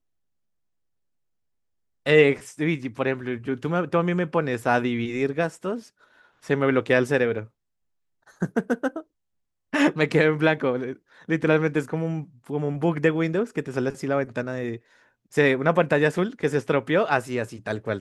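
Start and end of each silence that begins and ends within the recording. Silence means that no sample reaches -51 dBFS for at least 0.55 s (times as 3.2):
7.48–8.27
9.03–9.73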